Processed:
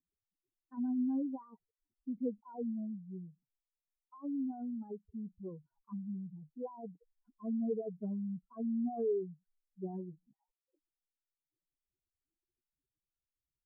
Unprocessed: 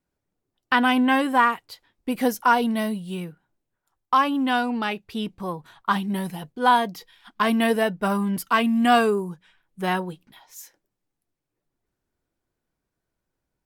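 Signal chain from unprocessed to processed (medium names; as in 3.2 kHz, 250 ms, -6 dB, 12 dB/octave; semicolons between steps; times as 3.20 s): spectral contrast enhancement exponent 3.5; four-pole ladder low-pass 480 Hz, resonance 45%; trim -6.5 dB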